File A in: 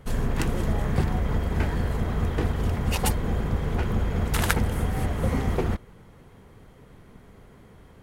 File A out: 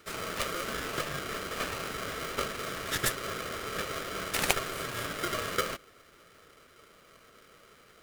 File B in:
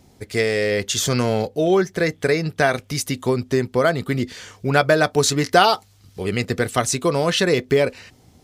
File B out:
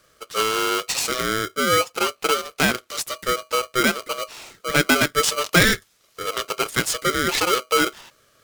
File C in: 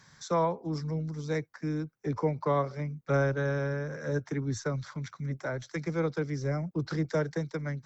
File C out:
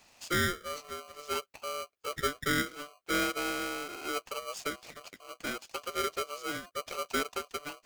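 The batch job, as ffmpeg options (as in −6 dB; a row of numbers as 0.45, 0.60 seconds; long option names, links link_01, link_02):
-af "highpass=frequency=290:width=0.5412,highpass=frequency=290:width=1.3066,aeval=exprs='val(0)*sgn(sin(2*PI*880*n/s))':channel_layout=same,volume=-1.5dB"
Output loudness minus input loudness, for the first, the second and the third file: −6.5, −1.0, −2.5 LU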